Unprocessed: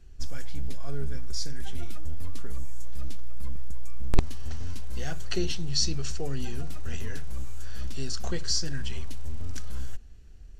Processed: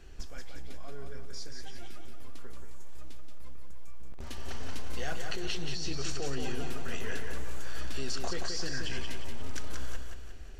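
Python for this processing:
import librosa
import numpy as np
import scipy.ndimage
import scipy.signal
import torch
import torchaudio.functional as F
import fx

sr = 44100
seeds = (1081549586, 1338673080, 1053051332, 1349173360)

y = fx.bass_treble(x, sr, bass_db=-12, treble_db=-6)
y = fx.over_compress(y, sr, threshold_db=-35.0, ratio=-0.5)
y = fx.echo_feedback(y, sr, ms=178, feedback_pct=45, wet_db=-5.0)
y = y * 10.0 ** (5.5 / 20.0)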